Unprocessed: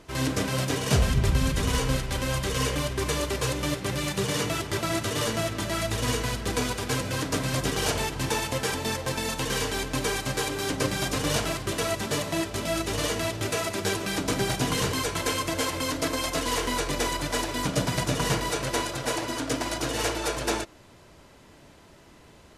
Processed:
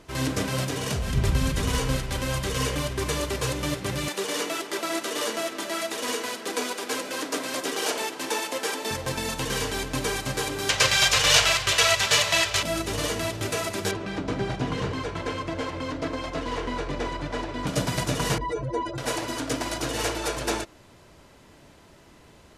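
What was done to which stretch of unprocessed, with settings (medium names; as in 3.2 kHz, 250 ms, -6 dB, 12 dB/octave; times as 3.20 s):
0.64–1.13 s: compression, threshold -24 dBFS
4.08–8.91 s: high-pass 270 Hz 24 dB/octave
10.69–12.63 s: FFT filter 110 Hz 0 dB, 270 Hz -15 dB, 480 Hz +1 dB, 1.5 kHz +9 dB, 2.7 kHz +14 dB, 6.9 kHz +11 dB, 9.8 kHz +4 dB
13.91–17.67 s: tape spacing loss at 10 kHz 23 dB
18.38–18.98 s: spectral contrast enhancement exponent 2.5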